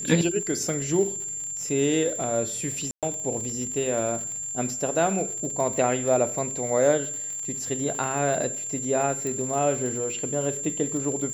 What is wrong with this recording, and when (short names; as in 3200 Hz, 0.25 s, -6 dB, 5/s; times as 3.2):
crackle 67/s -32 dBFS
tone 7300 Hz -30 dBFS
2.91–3.03 gap 0.117 s
9.27 pop